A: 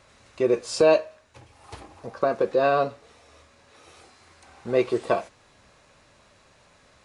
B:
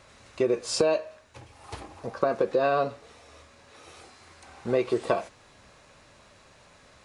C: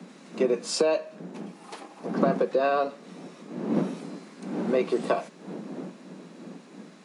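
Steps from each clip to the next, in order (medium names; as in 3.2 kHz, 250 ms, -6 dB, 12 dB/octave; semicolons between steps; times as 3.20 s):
compression 6:1, threshold -22 dBFS, peak gain reduction 9.5 dB; trim +2 dB
wind noise 220 Hz -31 dBFS; steep high-pass 170 Hz 72 dB/octave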